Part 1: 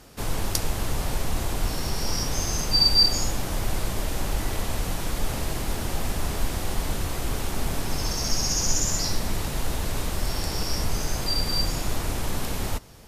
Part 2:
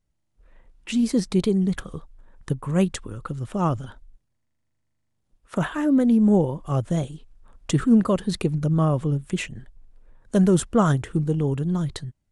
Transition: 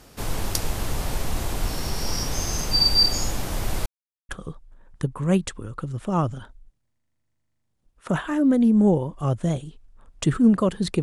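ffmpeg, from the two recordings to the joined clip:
ffmpeg -i cue0.wav -i cue1.wav -filter_complex "[0:a]apad=whole_dur=11.02,atrim=end=11.02,asplit=2[link_01][link_02];[link_01]atrim=end=3.86,asetpts=PTS-STARTPTS,afade=type=out:start_time=3.856:duration=0.004:curve=hsin[link_03];[link_02]atrim=start=3.86:end=4.29,asetpts=PTS-STARTPTS,volume=0[link_04];[1:a]atrim=start=1.76:end=8.49,asetpts=PTS-STARTPTS,afade=type=in:duration=0.004:curve=hsin[link_05];[link_03][link_04][link_05]concat=n=3:v=0:a=1" out.wav

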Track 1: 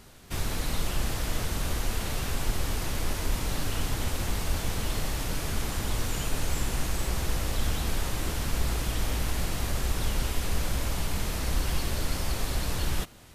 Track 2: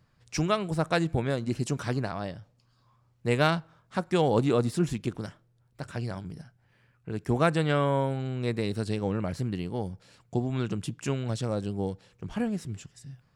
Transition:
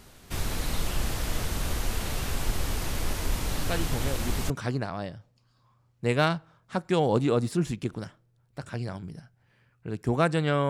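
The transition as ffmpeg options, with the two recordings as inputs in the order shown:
ffmpeg -i cue0.wav -i cue1.wav -filter_complex "[1:a]asplit=2[link_01][link_02];[0:a]apad=whole_dur=10.69,atrim=end=10.69,atrim=end=4.502[link_03];[link_02]atrim=start=1.718:end=7.91[link_04];[link_01]atrim=start=0.84:end=1.72,asetpts=PTS-STARTPTS,volume=-6dB,afade=type=in:duration=0.004:curve=hsin,afade=type=out:start_time=0.876:duration=0.004:curve=hsin,adelay=3620[link_05];[link_03][link_04]acrossfade=duration=0.004:curve1=hsin:curve2=hsin[link_06];[link_06][link_05]amix=inputs=2:normalize=0" out.wav

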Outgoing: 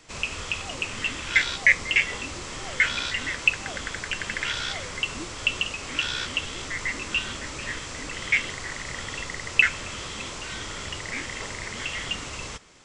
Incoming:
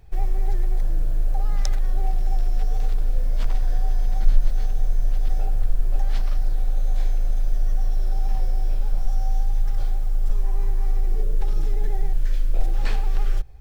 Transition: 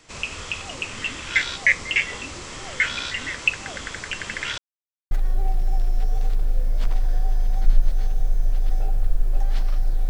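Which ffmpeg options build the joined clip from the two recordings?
ffmpeg -i cue0.wav -i cue1.wav -filter_complex "[0:a]apad=whole_dur=10.09,atrim=end=10.09,asplit=2[link_01][link_02];[link_01]atrim=end=4.58,asetpts=PTS-STARTPTS,afade=type=out:start_time=4.576:duration=0.004:curve=hsin[link_03];[link_02]atrim=start=4.58:end=5.11,asetpts=PTS-STARTPTS,volume=0[link_04];[1:a]atrim=start=1.7:end=6.68,asetpts=PTS-STARTPTS,afade=type=in:duration=0.004:curve=hsin[link_05];[link_03][link_04][link_05]concat=n=3:v=0:a=1" out.wav

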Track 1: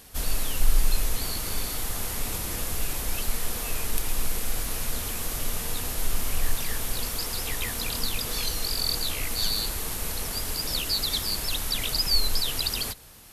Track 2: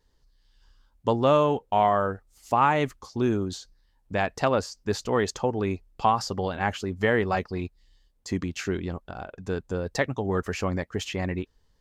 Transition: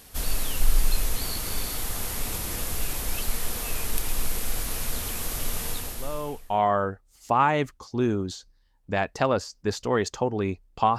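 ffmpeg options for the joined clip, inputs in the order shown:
ffmpeg -i cue0.wav -i cue1.wav -filter_complex "[0:a]apad=whole_dur=10.98,atrim=end=10.98,atrim=end=6.7,asetpts=PTS-STARTPTS[link_01];[1:a]atrim=start=0.9:end=6.2,asetpts=PTS-STARTPTS[link_02];[link_01][link_02]acrossfade=duration=1.02:curve1=qua:curve2=qua" out.wav

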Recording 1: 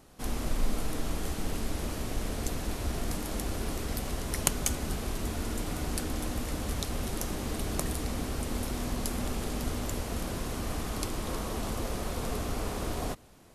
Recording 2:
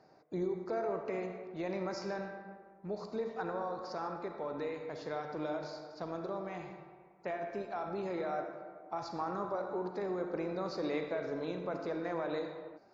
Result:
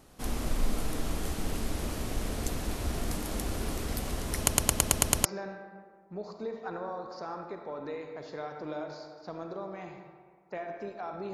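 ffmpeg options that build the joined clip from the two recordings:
ffmpeg -i cue0.wav -i cue1.wav -filter_complex "[0:a]apad=whole_dur=11.33,atrim=end=11.33,asplit=8[link_01][link_02][link_03][link_04][link_05][link_06][link_07][link_08];[link_01]atrim=end=4.482[link_09];[link_02]atrim=start=4.368:end=4.482[link_10];[link_03]atrim=start=4.368:end=4.482[link_11];[link_04]atrim=start=4.368:end=4.482[link_12];[link_05]atrim=start=4.368:end=4.482[link_13];[link_06]atrim=start=4.368:end=4.482[link_14];[link_07]atrim=start=4.368:end=4.482[link_15];[link_08]atrim=start=4.368:end=4.482[link_16];[1:a]atrim=start=1.978:end=8.06[link_17];[link_09][link_10]acrossfade=duration=0.004:curve1=hsin:curve2=hsin[link_18];[link_18][link_11]acrossfade=duration=0.004:curve1=hsin:curve2=hsin[link_19];[link_19][link_12]acrossfade=duration=0.004:curve1=hsin:curve2=hsin[link_20];[link_20][link_13]acrossfade=duration=0.004:curve1=hsin:curve2=hsin[link_21];[link_21][link_14]acrossfade=duration=0.004:curve1=hsin:curve2=hsin[link_22];[link_22][link_15]acrossfade=duration=0.004:curve1=hsin:curve2=hsin[link_23];[link_23][link_16]acrossfade=duration=0.004:curve1=hsin:curve2=hsin[link_24];[link_24][link_17]acrossfade=duration=0.004:curve1=hsin:curve2=hsin" out.wav

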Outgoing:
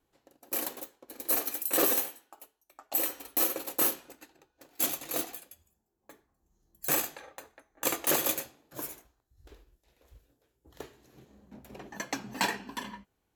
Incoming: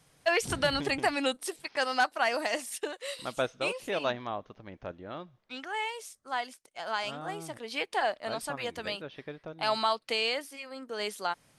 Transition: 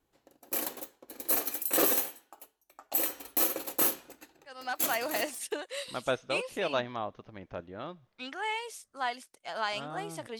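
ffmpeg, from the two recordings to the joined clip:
ffmpeg -i cue0.wav -i cue1.wav -filter_complex "[0:a]apad=whole_dur=10.39,atrim=end=10.39,atrim=end=5.68,asetpts=PTS-STARTPTS[link_01];[1:a]atrim=start=1.73:end=7.7,asetpts=PTS-STARTPTS[link_02];[link_01][link_02]acrossfade=duration=1.26:curve1=qsin:curve2=qsin" out.wav

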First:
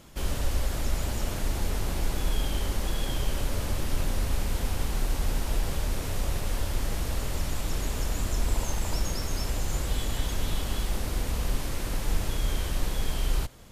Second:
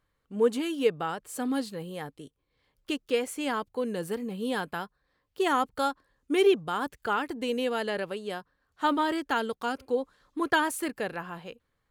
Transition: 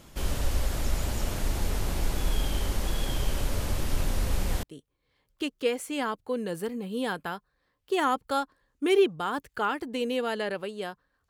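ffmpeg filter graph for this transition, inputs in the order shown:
ffmpeg -i cue0.wav -i cue1.wav -filter_complex "[1:a]asplit=2[link_01][link_02];[0:a]apad=whole_dur=11.29,atrim=end=11.29,atrim=end=4.632[link_03];[link_02]atrim=start=2.108:end=8.77[link_04];[link_01]atrim=start=1.71:end=2.11,asetpts=PTS-STARTPTS,volume=-7.5dB,afade=type=in:duration=0.004:curve=hsin,afade=type=out:start_time=0.396:duration=0.004:curve=hsin,adelay=4230[link_05];[link_03][link_04]acrossfade=duration=0.004:curve1=hsin:curve2=hsin[link_06];[link_06][link_05]amix=inputs=2:normalize=0" out.wav

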